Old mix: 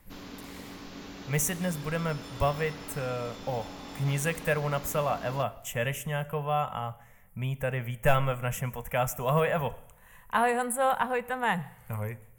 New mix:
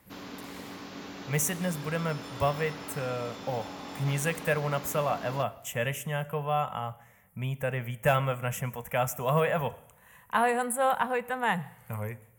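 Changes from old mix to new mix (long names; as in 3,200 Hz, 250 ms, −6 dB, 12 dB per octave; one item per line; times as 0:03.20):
first sound: add parametric band 1,000 Hz +3.5 dB 2.9 octaves
master: add high-pass filter 90 Hz 12 dB per octave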